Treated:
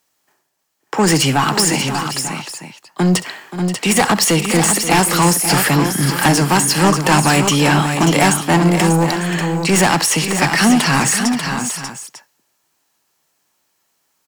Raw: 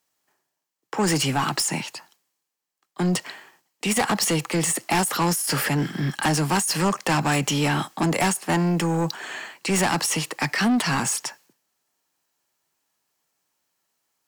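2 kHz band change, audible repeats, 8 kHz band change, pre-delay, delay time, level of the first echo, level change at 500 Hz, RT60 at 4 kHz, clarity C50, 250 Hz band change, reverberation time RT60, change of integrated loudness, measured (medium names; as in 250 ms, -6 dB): +9.0 dB, 4, +9.0 dB, no reverb, 66 ms, -16.5 dB, +9.0 dB, no reverb, no reverb, +9.0 dB, no reverb, +8.5 dB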